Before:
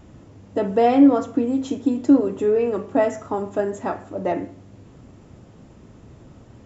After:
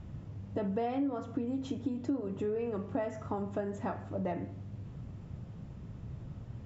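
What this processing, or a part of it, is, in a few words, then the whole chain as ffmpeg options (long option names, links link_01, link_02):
jukebox: -af "lowpass=5200,lowshelf=frequency=210:width_type=q:width=1.5:gain=8,acompressor=threshold=-26dB:ratio=4,volume=-6dB"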